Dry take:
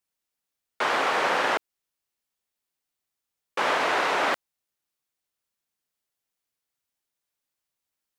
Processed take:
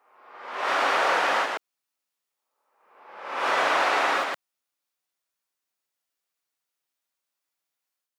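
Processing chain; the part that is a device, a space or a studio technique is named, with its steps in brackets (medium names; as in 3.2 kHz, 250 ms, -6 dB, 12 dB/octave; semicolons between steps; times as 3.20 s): ghost voice (reverse; reverberation RT60 1.0 s, pre-delay 105 ms, DRR -6 dB; reverse; high-pass 380 Hz 6 dB/octave); trim -5 dB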